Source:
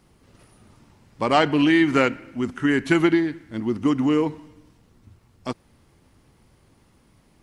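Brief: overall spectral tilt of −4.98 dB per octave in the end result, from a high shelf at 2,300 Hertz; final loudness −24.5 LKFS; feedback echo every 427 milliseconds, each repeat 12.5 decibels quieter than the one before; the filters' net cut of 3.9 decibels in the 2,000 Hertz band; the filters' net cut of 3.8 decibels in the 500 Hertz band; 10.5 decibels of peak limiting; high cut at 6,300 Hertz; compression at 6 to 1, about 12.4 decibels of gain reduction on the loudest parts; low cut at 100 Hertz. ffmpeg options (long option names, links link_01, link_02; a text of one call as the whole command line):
ffmpeg -i in.wav -af "highpass=100,lowpass=6300,equalizer=frequency=500:width_type=o:gain=-5.5,equalizer=frequency=2000:width_type=o:gain=-7,highshelf=frequency=2300:gain=5,acompressor=threshold=-30dB:ratio=6,alimiter=level_in=4dB:limit=-24dB:level=0:latency=1,volume=-4dB,aecho=1:1:427|854|1281:0.237|0.0569|0.0137,volume=13.5dB" out.wav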